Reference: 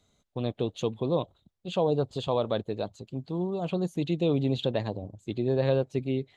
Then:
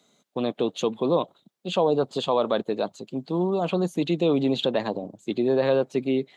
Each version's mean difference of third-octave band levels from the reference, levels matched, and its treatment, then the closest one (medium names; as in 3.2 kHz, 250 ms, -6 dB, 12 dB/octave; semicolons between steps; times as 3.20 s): 2.5 dB: high-pass 180 Hz 24 dB/octave; dynamic bell 1.2 kHz, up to +5 dB, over -44 dBFS, Q 1.2; in parallel at +2 dB: peak limiter -24 dBFS, peak gain reduction 11 dB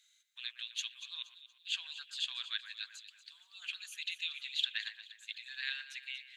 22.0 dB: Chebyshev high-pass 1.6 kHz, order 5; echo whose repeats swap between lows and highs 118 ms, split 2.4 kHz, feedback 61%, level -9.5 dB; trim +5 dB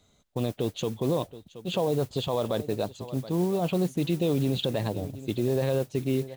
8.0 dB: modulation noise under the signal 22 dB; on a send: delay 723 ms -20 dB; on the sum: peak limiter -21 dBFS, peak gain reduction 8 dB; trim +4.5 dB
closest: first